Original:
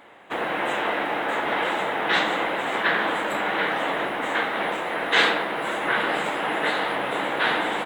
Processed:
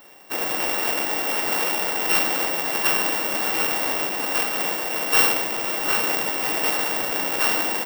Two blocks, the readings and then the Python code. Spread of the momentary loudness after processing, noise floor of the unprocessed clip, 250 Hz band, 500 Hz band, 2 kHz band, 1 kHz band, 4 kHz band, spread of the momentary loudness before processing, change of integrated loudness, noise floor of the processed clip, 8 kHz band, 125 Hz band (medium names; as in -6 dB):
4 LU, -29 dBFS, -1.5 dB, -2.5 dB, -2.5 dB, -3.5 dB, +1.5 dB, 5 LU, +3.0 dB, -27 dBFS, +16.5 dB, -1.5 dB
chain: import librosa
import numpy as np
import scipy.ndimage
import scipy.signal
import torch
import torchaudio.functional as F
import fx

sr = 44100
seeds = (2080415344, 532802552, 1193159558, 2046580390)

y = np.r_[np.sort(x[:len(x) // 16 * 16].reshape(-1, 16), axis=1).ravel(), x[len(x) // 16 * 16:]]
y = (np.kron(y[::2], np.eye(2)[0]) * 2)[:len(y)]
y = y * 10.0 ** (-1.5 / 20.0)